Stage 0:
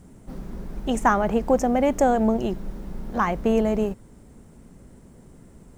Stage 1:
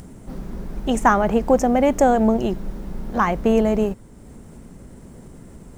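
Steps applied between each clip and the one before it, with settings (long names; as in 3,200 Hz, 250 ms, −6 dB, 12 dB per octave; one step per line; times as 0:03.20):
upward compression, threshold −38 dBFS
level +3.5 dB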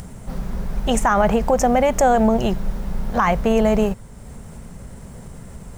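parametric band 310 Hz −13 dB 0.73 octaves
brickwall limiter −14 dBFS, peak gain reduction 9.5 dB
level +6.5 dB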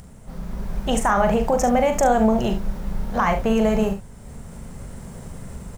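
automatic gain control gain up to 9 dB
on a send: ambience of single reflections 41 ms −7.5 dB, 71 ms −11.5 dB
on the sum: level −8.5 dB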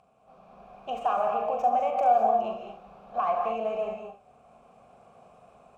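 stylus tracing distortion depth 0.12 ms
formant filter a
reverb whose tail is shaped and stops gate 240 ms rising, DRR 3 dB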